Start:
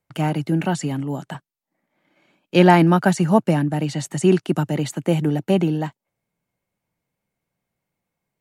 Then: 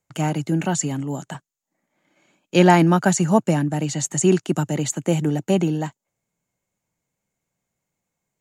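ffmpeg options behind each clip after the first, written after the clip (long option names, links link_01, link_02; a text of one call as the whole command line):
ffmpeg -i in.wav -af "equalizer=frequency=6900:width_type=o:width=0.37:gain=14,volume=-1dB" out.wav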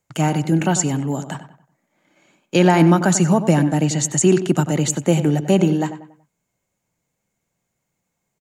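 ffmpeg -i in.wav -filter_complex "[0:a]alimiter=limit=-9dB:level=0:latency=1:release=83,asplit=2[link_01][link_02];[link_02]adelay=94,lowpass=frequency=2600:poles=1,volume=-11dB,asplit=2[link_03][link_04];[link_04]adelay=94,lowpass=frequency=2600:poles=1,volume=0.39,asplit=2[link_05][link_06];[link_06]adelay=94,lowpass=frequency=2600:poles=1,volume=0.39,asplit=2[link_07][link_08];[link_08]adelay=94,lowpass=frequency=2600:poles=1,volume=0.39[link_09];[link_03][link_05][link_07][link_09]amix=inputs=4:normalize=0[link_10];[link_01][link_10]amix=inputs=2:normalize=0,volume=4dB" out.wav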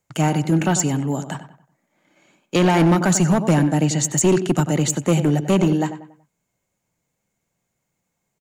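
ffmpeg -i in.wav -af "asoftclip=type=hard:threshold=-11dB" out.wav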